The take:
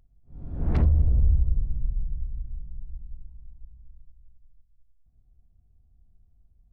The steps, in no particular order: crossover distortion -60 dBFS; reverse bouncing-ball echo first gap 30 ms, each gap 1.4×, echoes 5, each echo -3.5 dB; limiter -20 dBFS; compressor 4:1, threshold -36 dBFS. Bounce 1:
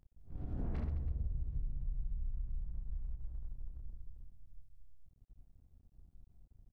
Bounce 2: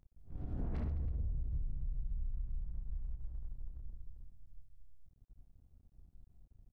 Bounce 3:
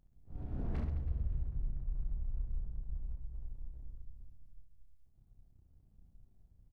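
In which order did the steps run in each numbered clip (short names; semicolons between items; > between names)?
limiter > reverse bouncing-ball echo > crossover distortion > compressor; reverse bouncing-ball echo > crossover distortion > limiter > compressor; limiter > compressor > crossover distortion > reverse bouncing-ball echo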